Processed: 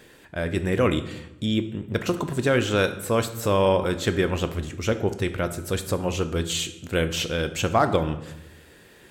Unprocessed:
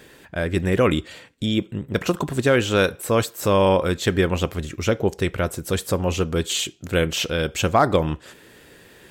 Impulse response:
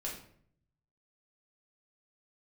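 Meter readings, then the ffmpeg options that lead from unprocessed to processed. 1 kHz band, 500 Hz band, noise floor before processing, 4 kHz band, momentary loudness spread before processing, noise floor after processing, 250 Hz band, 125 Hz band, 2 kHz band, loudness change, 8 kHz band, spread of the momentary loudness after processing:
-3.0 dB, -3.0 dB, -50 dBFS, -3.0 dB, 9 LU, -51 dBFS, -2.5 dB, -2.5 dB, -3.0 dB, -3.0 dB, -3.0 dB, 8 LU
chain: -filter_complex "[0:a]asplit=2[s0][s1];[1:a]atrim=start_sample=2205,afade=t=out:st=0.38:d=0.01,atrim=end_sample=17199,asetrate=25137,aresample=44100[s2];[s1][s2]afir=irnorm=-1:irlink=0,volume=0.266[s3];[s0][s3]amix=inputs=2:normalize=0,volume=0.562"

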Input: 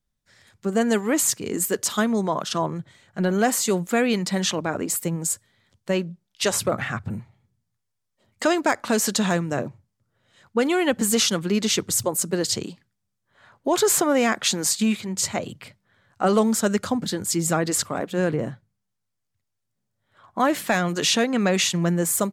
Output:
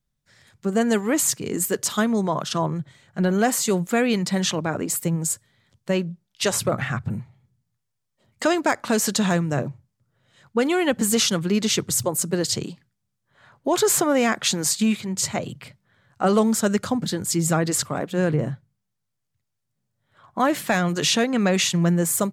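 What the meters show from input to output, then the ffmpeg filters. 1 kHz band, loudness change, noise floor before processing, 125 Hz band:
0.0 dB, +0.5 dB, -79 dBFS, +3.5 dB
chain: -af "equalizer=f=140:w=2.9:g=7.5"

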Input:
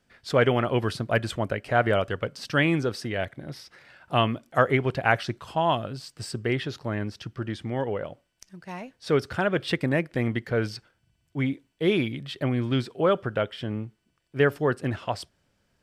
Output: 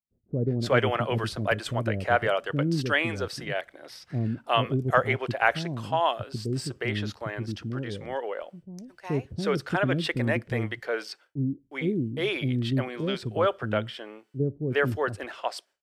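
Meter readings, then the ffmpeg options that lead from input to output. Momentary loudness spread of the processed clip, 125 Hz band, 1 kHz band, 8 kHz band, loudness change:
10 LU, 0.0 dB, -0.5 dB, 0.0 dB, -1.5 dB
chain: -filter_complex "[0:a]agate=range=0.0224:threshold=0.00355:ratio=3:detection=peak,acrossover=split=380[s0][s1];[s1]adelay=360[s2];[s0][s2]amix=inputs=2:normalize=0"

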